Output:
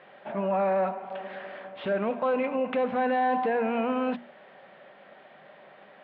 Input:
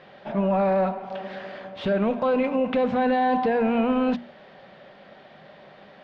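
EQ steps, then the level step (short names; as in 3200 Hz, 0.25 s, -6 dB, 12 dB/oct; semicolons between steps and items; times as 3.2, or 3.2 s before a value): HPF 420 Hz 6 dB/oct; Chebyshev low-pass 2800 Hz, order 2; air absorption 160 m; 0.0 dB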